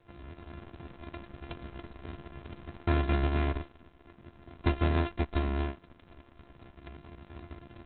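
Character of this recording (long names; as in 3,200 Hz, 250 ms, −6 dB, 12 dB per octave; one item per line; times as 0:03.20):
a buzz of ramps at a fixed pitch in blocks of 128 samples
Opus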